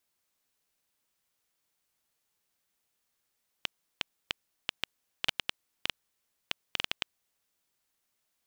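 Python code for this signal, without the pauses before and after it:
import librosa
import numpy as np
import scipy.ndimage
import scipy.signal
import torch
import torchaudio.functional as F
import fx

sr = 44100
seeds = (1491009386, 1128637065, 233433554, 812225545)

y = fx.geiger_clicks(sr, seeds[0], length_s=3.46, per_s=5.5, level_db=-10.0)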